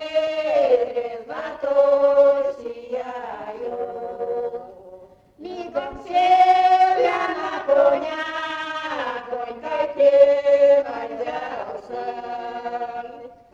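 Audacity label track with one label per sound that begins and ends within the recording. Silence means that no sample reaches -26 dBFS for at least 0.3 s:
5.450000	13.060000	sound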